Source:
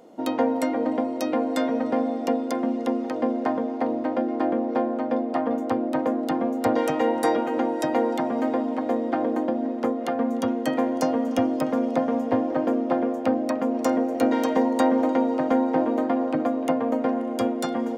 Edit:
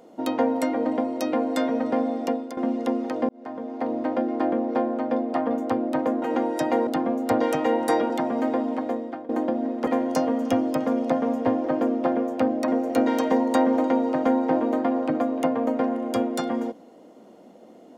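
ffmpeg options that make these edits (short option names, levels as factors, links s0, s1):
-filter_complex "[0:a]asplit=9[s0][s1][s2][s3][s4][s5][s6][s7][s8];[s0]atrim=end=2.57,asetpts=PTS-STARTPTS,afade=t=out:st=2.22:d=0.35:silence=0.251189[s9];[s1]atrim=start=2.57:end=3.29,asetpts=PTS-STARTPTS,afade=t=in:d=0.004:c=hsin:silence=0.251189,afade=t=out:st=0.716:d=0.004:c=hsin[s10];[s2]atrim=start=3.29:end=6.222,asetpts=PTS-STARTPTS,afade=t=in:d=0.73[s11];[s3]atrim=start=7.448:end=8.102[s12];[s4]atrim=start=6.218:end=7.452[s13];[s5]atrim=start=8.098:end=9.29,asetpts=PTS-STARTPTS,afade=t=out:st=0.642:d=0.55:silence=0.1[s14];[s6]atrim=start=9.29:end=9.872,asetpts=PTS-STARTPTS,afade=t=in:d=0.004:c=hsin:silence=0.1[s15];[s7]atrim=start=10.728:end=13.542[s16];[s8]atrim=start=13.928[s17];[s9][s10][s11]concat=n=3:v=0:a=1[s18];[s18][s12]acrossfade=d=0.004:c1=hsin:c2=hsin[s19];[s19][s13]acrossfade=d=0.004:c1=hsin:c2=hsin[s20];[s14][s15]concat=n=2:v=0:a=1[s21];[s20][s21]acrossfade=d=0.004:c1=hsin:c2=hsin[s22];[s22][s16]acrossfade=d=0.004:c1=hsin:c2=hsin[s23];[s23][s17]acrossfade=d=0.004:c1=hsin:c2=hsin"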